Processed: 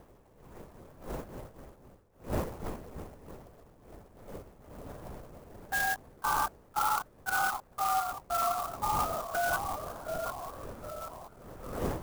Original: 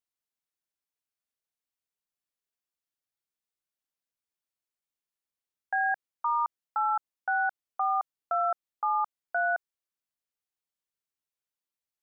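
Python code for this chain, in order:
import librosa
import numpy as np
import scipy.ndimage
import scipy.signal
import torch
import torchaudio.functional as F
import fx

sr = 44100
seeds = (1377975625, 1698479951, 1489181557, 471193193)

p1 = fx.dmg_wind(x, sr, seeds[0], corner_hz=580.0, level_db=-42.0)
p2 = p1 + fx.echo_feedback(p1, sr, ms=530, feedback_pct=56, wet_db=-23.5, dry=0)
p3 = fx.echo_pitch(p2, sr, ms=173, semitones=-1, count=3, db_per_echo=-6.0)
p4 = fx.lpc_vocoder(p3, sr, seeds[1], excitation='whisper', order=10)
p5 = fx.clock_jitter(p4, sr, seeds[2], jitter_ms=0.046)
y = F.gain(torch.from_numpy(p5), -3.0).numpy()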